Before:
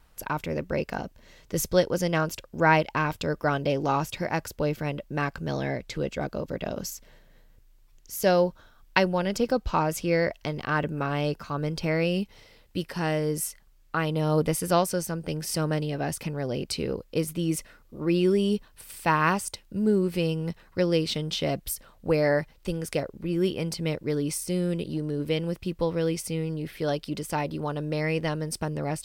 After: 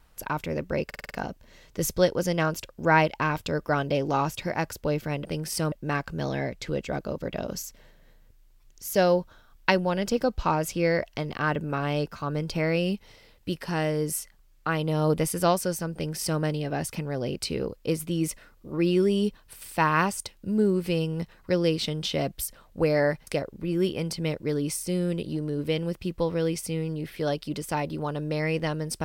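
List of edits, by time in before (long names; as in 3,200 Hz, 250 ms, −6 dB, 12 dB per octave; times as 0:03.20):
0:00.86: stutter 0.05 s, 6 plays
0:15.22–0:15.69: duplicate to 0:05.00
0:22.55–0:22.88: remove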